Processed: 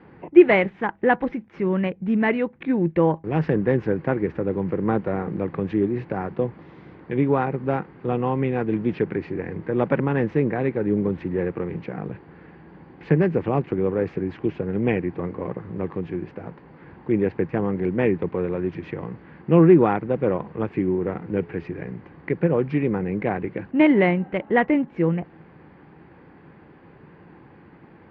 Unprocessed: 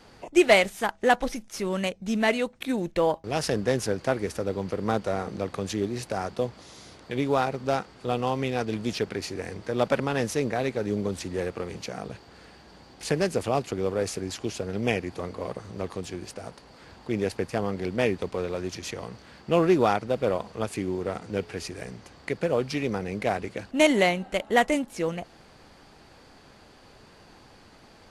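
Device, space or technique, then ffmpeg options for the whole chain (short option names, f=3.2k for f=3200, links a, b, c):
bass cabinet: -af "highpass=71,equalizer=f=160:t=q:w=4:g=10,equalizer=f=330:t=q:w=4:g=6,equalizer=f=650:t=q:w=4:g=-8,equalizer=f=1.3k:t=q:w=4:g=-5,lowpass=f=2.1k:w=0.5412,lowpass=f=2.1k:w=1.3066,volume=4dB"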